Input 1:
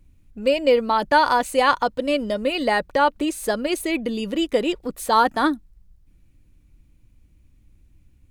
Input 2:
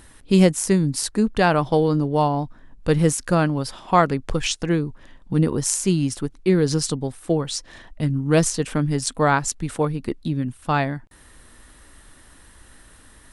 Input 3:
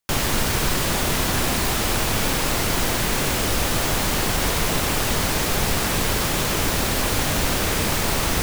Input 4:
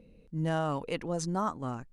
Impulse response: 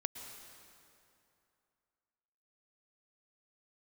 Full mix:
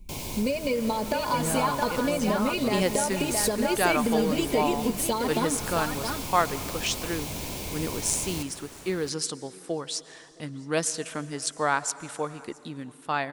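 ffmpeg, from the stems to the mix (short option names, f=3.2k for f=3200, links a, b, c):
-filter_complex "[0:a]aecho=1:1:4.8:0.78,acompressor=threshold=-18dB:ratio=6,volume=3dB,asplit=3[a][b][c];[b]volume=-14.5dB[d];[c]volume=-14dB[e];[1:a]highpass=f=660:p=1,adelay=2400,volume=-6.5dB,asplit=3[f][g][h];[g]volume=-8dB[i];[h]volume=-23.5dB[j];[2:a]highpass=61,volume=-13dB,asplit=3[k][l][m];[l]volume=-13dB[n];[m]volume=-12dB[o];[3:a]adelay=1000,volume=-1.5dB[p];[a][k]amix=inputs=2:normalize=0,asuperstop=centerf=1500:order=20:qfactor=1.5,acompressor=threshold=-25dB:ratio=6,volume=0dB[q];[4:a]atrim=start_sample=2205[r];[d][i][n]amix=inputs=3:normalize=0[s];[s][r]afir=irnorm=-1:irlink=0[t];[e][j][o]amix=inputs=3:normalize=0,aecho=0:1:667:1[u];[f][p][q][t][u]amix=inputs=5:normalize=0"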